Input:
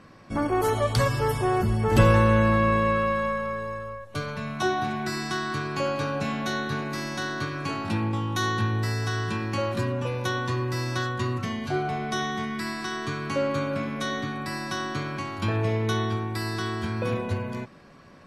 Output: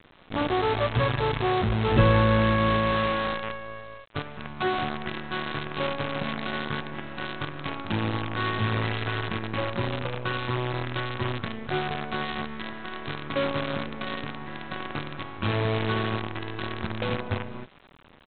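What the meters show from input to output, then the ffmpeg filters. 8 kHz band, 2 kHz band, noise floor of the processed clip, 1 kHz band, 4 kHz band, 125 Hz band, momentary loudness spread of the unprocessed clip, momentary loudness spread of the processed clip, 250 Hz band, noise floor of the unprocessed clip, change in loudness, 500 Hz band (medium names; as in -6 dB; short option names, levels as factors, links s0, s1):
under -40 dB, -0.5 dB, -53 dBFS, -1.0 dB, +1.0 dB, -2.0 dB, 9 LU, 13 LU, -2.0 dB, -48 dBFS, -1.5 dB, -1.5 dB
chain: -af "lowpass=2600,aresample=8000,acrusher=bits=5:dc=4:mix=0:aa=0.000001,aresample=44100,volume=0.841"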